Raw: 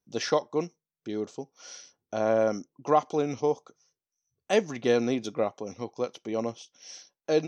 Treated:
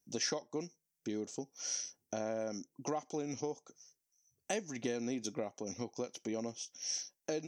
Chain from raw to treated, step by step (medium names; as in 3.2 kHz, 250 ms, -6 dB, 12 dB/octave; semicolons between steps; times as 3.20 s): peaking EQ 1.2 kHz -8.5 dB 0.71 oct; compression 4:1, threshold -36 dBFS, peak gain reduction 15 dB; FFT filter 140 Hz 0 dB, 270 Hz +3 dB, 440 Hz -1 dB, 1.9 kHz +4 dB, 3.8 kHz -1 dB, 5.9 kHz +10 dB; trim -1 dB